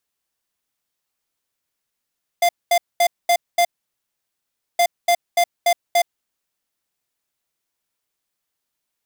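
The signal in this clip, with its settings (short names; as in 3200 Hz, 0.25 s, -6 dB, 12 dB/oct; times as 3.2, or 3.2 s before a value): beep pattern square 695 Hz, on 0.07 s, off 0.22 s, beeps 5, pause 1.14 s, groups 2, -15 dBFS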